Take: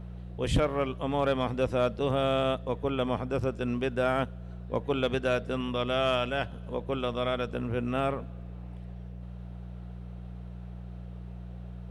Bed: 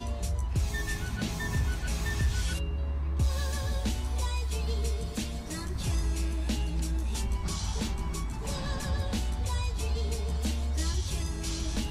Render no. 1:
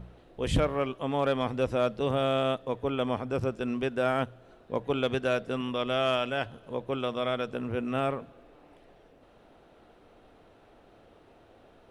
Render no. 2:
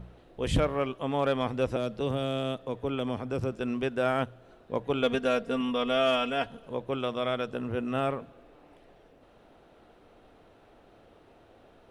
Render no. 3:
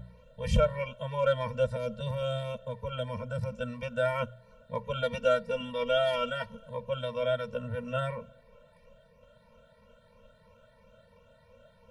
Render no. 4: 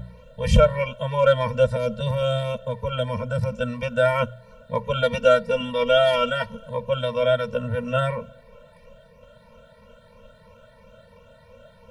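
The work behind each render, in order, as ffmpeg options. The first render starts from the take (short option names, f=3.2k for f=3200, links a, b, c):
-af "bandreject=f=60:t=h:w=4,bandreject=f=120:t=h:w=4,bandreject=f=180:t=h:w=4"
-filter_complex "[0:a]asettb=1/sr,asplit=3[a][b][c];[a]atrim=end=1.764[d];[b]atrim=start=1.76:end=3.52,asetpts=PTS-STARTPTS,afade=t=in:d=0.004:c=qsin,afade=t=out:st=1.756:d=0.004:c=qsin,acrossover=split=450|3000[e][f][g];[f]acompressor=threshold=-34dB:ratio=6:attack=3.2:release=140:knee=2.83:detection=peak[h];[e][h][g]amix=inputs=3:normalize=0[i];[c]atrim=start=3.516[j];[d][i]acrossfade=d=0.004:c1=hsin:c2=qsin[k];[k][j]acrossfade=d=0.004:c1=qsin:c2=hsin,asettb=1/sr,asplit=3[l][m][n];[l]atrim=end=5.024[o];[m]atrim=start=5.02:end=6.67,asetpts=PTS-STARTPTS,afade=t=in:d=0.004:c=qsin,afade=t=out:st=1.646:d=0.004:c=qsin,aecho=1:1:4.3:0.65,atrim=end_sample=72765[p];[n]atrim=start=6.666[q];[o][p]acrossfade=d=0.004:c1=hsin:c2=qsin[r];[r][q]acrossfade=d=0.004:c1=qsin:c2=hsin,asettb=1/sr,asplit=3[s][t][u];[s]atrim=end=7.474[v];[t]atrim=start=7.47:end=8.07,asetpts=PTS-STARTPTS,afade=t=in:d=0.004:c=qsin,afade=t=out:st=0.596:d=0.004:c=qsin,bandreject=f=2.3k:w=11[w];[u]atrim=start=8.066[x];[v][w]acrossfade=d=0.004:c1=hsin:c2=qsin[y];[y][x]acrossfade=d=0.004:c1=qsin:c2=hsin"
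-af "afftfilt=real='re*pow(10,9/40*sin(2*PI*(0.83*log(max(b,1)*sr/1024/100)/log(2)-(3)*(pts-256)/sr)))':imag='im*pow(10,9/40*sin(2*PI*(0.83*log(max(b,1)*sr/1024/100)/log(2)-(3)*(pts-256)/sr)))':win_size=1024:overlap=0.75,afftfilt=real='re*eq(mod(floor(b*sr/1024/220),2),0)':imag='im*eq(mod(floor(b*sr/1024/220),2),0)':win_size=1024:overlap=0.75"
-af "volume=9dB"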